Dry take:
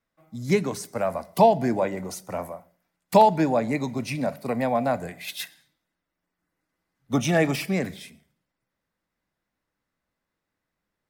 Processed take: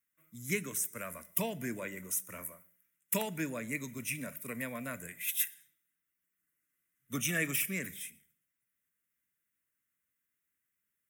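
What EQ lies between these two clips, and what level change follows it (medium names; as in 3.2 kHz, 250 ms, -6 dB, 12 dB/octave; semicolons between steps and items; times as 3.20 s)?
high-pass 52 Hz; pre-emphasis filter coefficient 0.9; static phaser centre 1.9 kHz, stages 4; +7.0 dB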